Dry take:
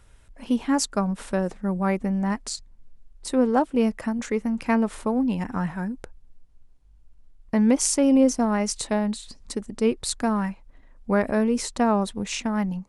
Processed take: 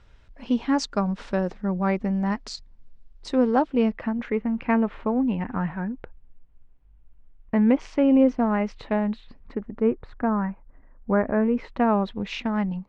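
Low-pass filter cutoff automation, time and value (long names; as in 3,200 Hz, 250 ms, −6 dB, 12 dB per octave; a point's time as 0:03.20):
low-pass filter 24 dB per octave
0:03.51 5,300 Hz
0:04.22 2,900 Hz
0:09.18 2,900 Hz
0:09.86 1,800 Hz
0:11.22 1,800 Hz
0:12.23 3,900 Hz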